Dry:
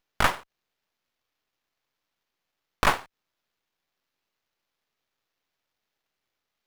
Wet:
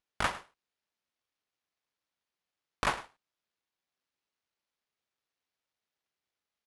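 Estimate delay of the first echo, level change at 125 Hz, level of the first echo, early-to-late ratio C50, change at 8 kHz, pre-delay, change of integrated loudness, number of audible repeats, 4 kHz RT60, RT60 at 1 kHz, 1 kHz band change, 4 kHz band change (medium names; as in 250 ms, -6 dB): 106 ms, -9.0 dB, -17.0 dB, no reverb, -7.5 dB, no reverb, -8.0 dB, 1, no reverb, no reverb, -8.0 dB, -7.5 dB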